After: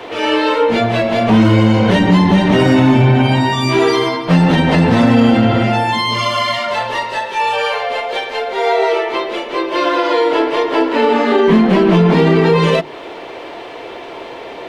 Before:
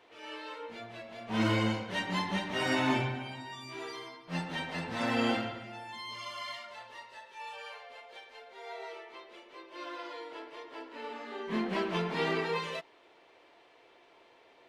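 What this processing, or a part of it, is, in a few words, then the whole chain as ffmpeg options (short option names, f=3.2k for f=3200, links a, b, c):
mastering chain: -filter_complex "[0:a]equalizer=f=3.2k:t=o:w=0.77:g=2,acrossover=split=210|440[a][b][c];[a]acompressor=threshold=-40dB:ratio=4[d];[b]acompressor=threshold=-43dB:ratio=4[e];[c]acompressor=threshold=-43dB:ratio=4[f];[d][e][f]amix=inputs=3:normalize=0,acompressor=threshold=-36dB:ratio=2.5,tiltshelf=f=970:g=4.5,asoftclip=type=hard:threshold=-29dB,alimiter=level_in=32dB:limit=-1dB:release=50:level=0:latency=1,bandreject=f=50:t=h:w=6,bandreject=f=100:t=h:w=6,bandreject=f=150:t=h:w=6,bandreject=f=200:t=h:w=6,bandreject=f=250:t=h:w=6,bandreject=f=300:t=h:w=6,bandreject=f=350:t=h:w=6,volume=-2dB"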